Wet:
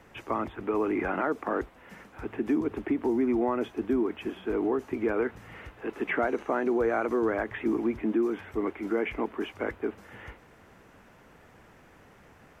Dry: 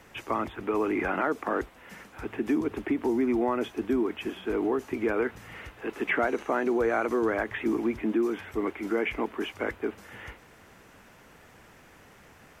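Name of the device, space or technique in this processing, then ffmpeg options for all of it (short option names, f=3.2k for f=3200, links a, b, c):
behind a face mask: -af "highshelf=f=2.3k:g=-8"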